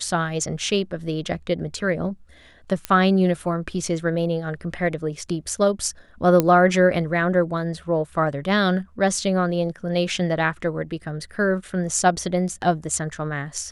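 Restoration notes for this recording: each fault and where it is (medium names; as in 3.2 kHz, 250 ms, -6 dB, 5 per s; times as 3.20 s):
2.85 s: pop -9 dBFS
6.40 s: pop -5 dBFS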